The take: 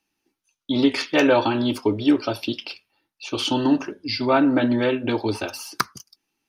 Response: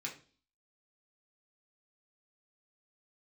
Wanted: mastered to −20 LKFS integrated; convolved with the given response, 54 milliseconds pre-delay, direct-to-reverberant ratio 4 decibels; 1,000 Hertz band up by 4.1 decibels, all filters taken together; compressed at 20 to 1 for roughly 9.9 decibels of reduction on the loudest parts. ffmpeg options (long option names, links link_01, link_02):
-filter_complex "[0:a]equalizer=frequency=1000:width_type=o:gain=5,acompressor=threshold=-21dB:ratio=20,asplit=2[link_01][link_02];[1:a]atrim=start_sample=2205,adelay=54[link_03];[link_02][link_03]afir=irnorm=-1:irlink=0,volume=-4dB[link_04];[link_01][link_04]amix=inputs=2:normalize=0,volume=5.5dB"